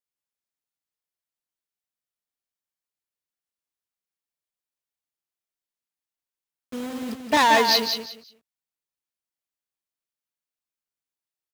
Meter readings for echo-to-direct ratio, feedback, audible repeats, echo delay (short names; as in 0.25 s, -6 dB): -6.0 dB, 23%, 3, 0.178 s